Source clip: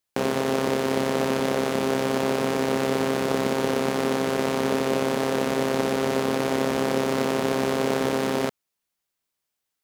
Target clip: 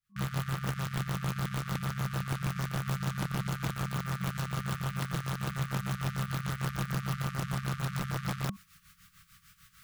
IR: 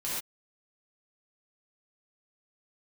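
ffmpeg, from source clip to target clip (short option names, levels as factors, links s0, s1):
-af "afftfilt=real='re*(1-between(b*sr/4096,200,1100))':imag='im*(1-between(b*sr/4096,200,1100))':win_size=4096:overlap=0.75,tremolo=f=6.7:d=0.78,highshelf=f=2400:g=-7.5,areverse,acompressor=mode=upward:threshold=0.0398:ratio=2.5,areverse,aeval=exprs='(mod(20*val(0)+1,2)-1)/20':c=same,tiltshelf=f=1200:g=5"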